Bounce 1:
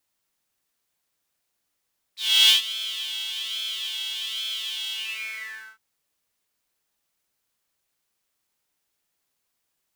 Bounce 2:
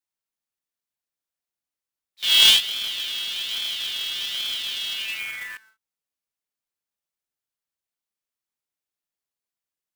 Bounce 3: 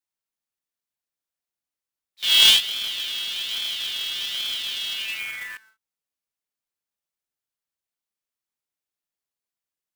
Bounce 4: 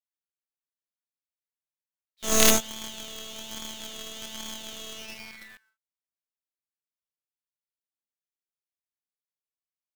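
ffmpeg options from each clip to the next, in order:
-af "afwtdn=0.02,acrusher=bits=2:mode=log:mix=0:aa=0.000001,volume=2.5dB"
-af anull
-filter_complex "[0:a]aeval=exprs='0.891*(cos(1*acos(clip(val(0)/0.891,-1,1)))-cos(1*PI/2))+0.355*(cos(3*acos(clip(val(0)/0.891,-1,1)))-cos(3*PI/2))+0.126*(cos(6*acos(clip(val(0)/0.891,-1,1)))-cos(6*PI/2))':c=same,asplit=2[a][b];[b]aeval=exprs='0.501*(abs(mod(val(0)/0.501+3,4)-2)-1)':c=same,volume=-6.5dB[c];[a][c]amix=inputs=2:normalize=0,volume=-3dB"

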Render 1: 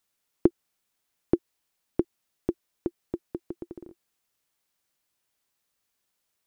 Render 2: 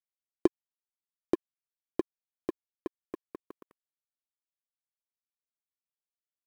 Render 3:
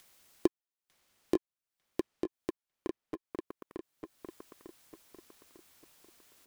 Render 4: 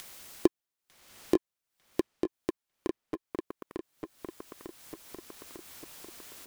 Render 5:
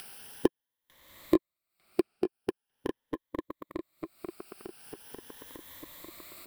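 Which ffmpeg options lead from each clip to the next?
-af "bass=f=250:g=-13,treble=f=4k:g=13,aeval=exprs='sgn(val(0))*max(abs(val(0))-0.02,0)':c=same"
-filter_complex "[0:a]acompressor=mode=upward:threshold=-33dB:ratio=2.5,asplit=2[a][b];[b]adelay=899,lowpass=f=5k:p=1,volume=-5dB,asplit=2[c][d];[d]adelay=899,lowpass=f=5k:p=1,volume=0.38,asplit=2[e][f];[f]adelay=899,lowpass=f=5k:p=1,volume=0.38,asplit=2[g][h];[h]adelay=899,lowpass=f=5k:p=1,volume=0.38,asplit=2[i][j];[j]adelay=899,lowpass=f=5k:p=1,volume=0.38[k];[c][e][g][i][k]amix=inputs=5:normalize=0[l];[a][l]amix=inputs=2:normalize=0,volume=-2.5dB"
-af "acompressor=mode=upward:threshold=-41dB:ratio=2.5,volume=4dB"
-af "afftfilt=real='re*pow(10,10/40*sin(2*PI*(1.1*log(max(b,1)*sr/1024/100)/log(2)-(0.42)*(pts-256)/sr)))':imag='im*pow(10,10/40*sin(2*PI*(1.1*log(max(b,1)*sr/1024/100)/log(2)-(0.42)*(pts-256)/sr)))':win_size=1024:overlap=0.75,equalizer=f=6.5k:w=2.8:g=-12"

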